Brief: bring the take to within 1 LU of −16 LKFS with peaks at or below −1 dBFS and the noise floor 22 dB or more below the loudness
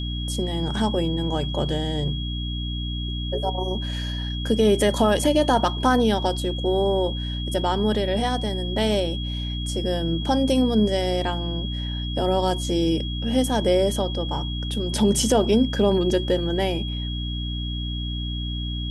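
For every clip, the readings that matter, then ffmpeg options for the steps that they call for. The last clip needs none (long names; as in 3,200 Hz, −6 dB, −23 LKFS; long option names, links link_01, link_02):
mains hum 60 Hz; hum harmonics up to 300 Hz; level of the hum −26 dBFS; interfering tone 3,300 Hz; level of the tone −33 dBFS; integrated loudness −23.5 LKFS; sample peak −7.5 dBFS; target loudness −16.0 LKFS
→ -af "bandreject=frequency=60:width_type=h:width=4,bandreject=frequency=120:width_type=h:width=4,bandreject=frequency=180:width_type=h:width=4,bandreject=frequency=240:width_type=h:width=4,bandreject=frequency=300:width_type=h:width=4"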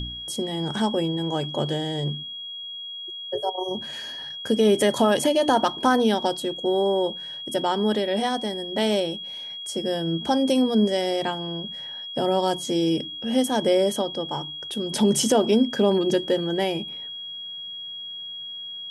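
mains hum none found; interfering tone 3,300 Hz; level of the tone −33 dBFS
→ -af "bandreject=frequency=3300:width=30"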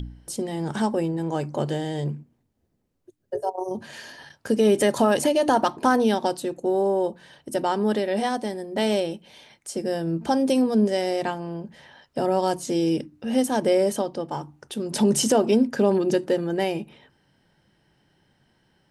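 interfering tone none found; integrated loudness −24.0 LKFS; sample peak −8.0 dBFS; target loudness −16.0 LKFS
→ -af "volume=8dB,alimiter=limit=-1dB:level=0:latency=1"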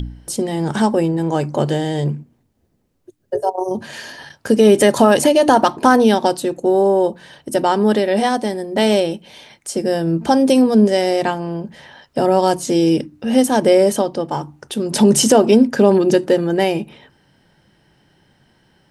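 integrated loudness −16.0 LKFS; sample peak −1.0 dBFS; background noise floor −62 dBFS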